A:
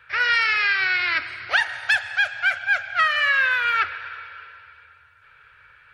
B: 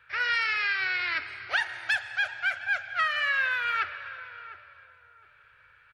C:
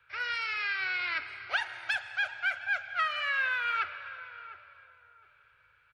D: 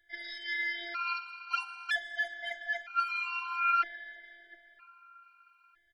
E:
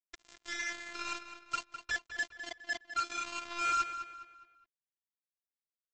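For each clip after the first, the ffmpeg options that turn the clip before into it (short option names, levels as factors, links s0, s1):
-filter_complex "[0:a]asplit=2[s0][s1];[s1]adelay=708,lowpass=f=830:p=1,volume=0.282,asplit=2[s2][s3];[s3]adelay=708,lowpass=f=830:p=1,volume=0.37,asplit=2[s4][s5];[s5]adelay=708,lowpass=f=830:p=1,volume=0.37,asplit=2[s6][s7];[s7]adelay=708,lowpass=f=830:p=1,volume=0.37[s8];[s0][s2][s4][s6][s8]amix=inputs=5:normalize=0,volume=0.447"
-filter_complex "[0:a]bandreject=f=1800:w=8.1,acrossover=split=290|480|3500[s0][s1][s2][s3];[s2]dynaudnorm=f=130:g=11:m=1.58[s4];[s0][s1][s4][s3]amix=inputs=4:normalize=0,volume=0.531"
-af "afftfilt=real='hypot(re,im)*cos(PI*b)':imag='0':win_size=512:overlap=0.75,afftfilt=real='re*gt(sin(2*PI*0.52*pts/sr)*(1-2*mod(floor(b*sr/1024/770),2)),0)':imag='im*gt(sin(2*PI*0.52*pts/sr)*(1-2*mod(floor(b*sr/1024/770),2)),0)':win_size=1024:overlap=0.75,volume=1.88"
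-filter_complex "[0:a]aresample=16000,acrusher=bits=4:mix=0:aa=0.5,aresample=44100,asplit=2[s0][s1];[s1]adelay=206,lowpass=f=4800:p=1,volume=0.316,asplit=2[s2][s3];[s3]adelay=206,lowpass=f=4800:p=1,volume=0.4,asplit=2[s4][s5];[s5]adelay=206,lowpass=f=4800:p=1,volume=0.4,asplit=2[s6][s7];[s7]adelay=206,lowpass=f=4800:p=1,volume=0.4[s8];[s0][s2][s4][s6][s8]amix=inputs=5:normalize=0,volume=0.631"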